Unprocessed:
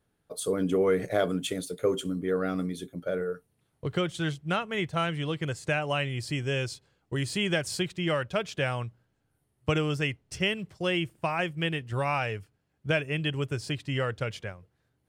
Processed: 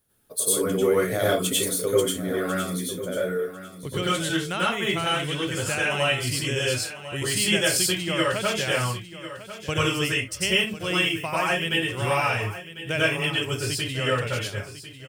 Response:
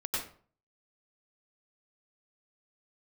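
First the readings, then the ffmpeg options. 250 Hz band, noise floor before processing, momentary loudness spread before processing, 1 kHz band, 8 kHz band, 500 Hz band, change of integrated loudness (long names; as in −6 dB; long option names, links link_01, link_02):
+2.5 dB, −75 dBFS, 9 LU, +5.5 dB, +15.0 dB, +4.0 dB, +5.5 dB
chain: -filter_complex "[0:a]aemphasis=mode=production:type=75fm,aecho=1:1:1048|2096:0.211|0.038[link_01];[1:a]atrim=start_sample=2205,afade=type=out:start_time=0.22:duration=0.01,atrim=end_sample=10143[link_02];[link_01][link_02]afir=irnorm=-1:irlink=0"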